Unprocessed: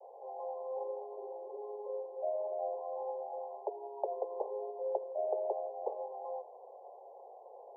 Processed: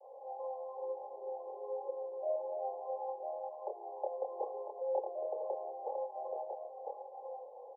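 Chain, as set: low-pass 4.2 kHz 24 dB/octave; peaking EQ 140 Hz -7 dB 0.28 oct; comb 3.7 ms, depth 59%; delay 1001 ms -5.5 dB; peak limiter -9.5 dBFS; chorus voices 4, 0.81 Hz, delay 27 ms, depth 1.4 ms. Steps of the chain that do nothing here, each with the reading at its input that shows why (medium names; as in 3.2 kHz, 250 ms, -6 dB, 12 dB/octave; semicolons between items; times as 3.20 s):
low-pass 4.2 kHz: input has nothing above 1.1 kHz; peaking EQ 140 Hz: input has nothing below 340 Hz; peak limiter -9.5 dBFS: peak at its input -19.0 dBFS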